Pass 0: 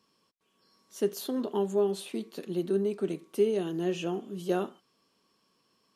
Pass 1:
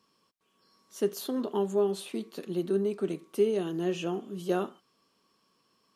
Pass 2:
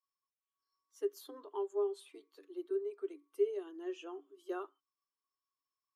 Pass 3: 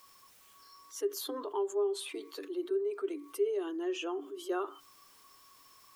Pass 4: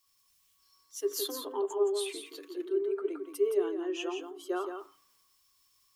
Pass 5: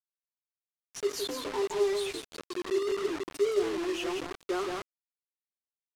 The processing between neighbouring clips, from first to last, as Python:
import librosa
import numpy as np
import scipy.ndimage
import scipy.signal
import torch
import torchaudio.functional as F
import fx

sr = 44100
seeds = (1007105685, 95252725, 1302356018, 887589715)

y1 = fx.peak_eq(x, sr, hz=1200.0, db=3.0, octaves=0.46)
y2 = fx.bin_expand(y1, sr, power=1.5)
y2 = scipy.signal.sosfilt(scipy.signal.cheby1(6, 9, 280.0, 'highpass', fs=sr, output='sos'), y2)
y2 = F.gain(torch.from_numpy(y2), -4.0).numpy()
y3 = fx.env_flatten(y2, sr, amount_pct=50)
y4 = y3 + 10.0 ** (-4.5 / 20.0) * np.pad(y3, (int(170 * sr / 1000.0), 0))[:len(y3)]
y4 = fx.band_widen(y4, sr, depth_pct=70)
y5 = y4 + 0.5 * 10.0 ** (-39.0 / 20.0) * np.sign(y4)
y5 = fx.quant_dither(y5, sr, seeds[0], bits=6, dither='none')
y5 = fx.air_absorb(y5, sr, metres=53.0)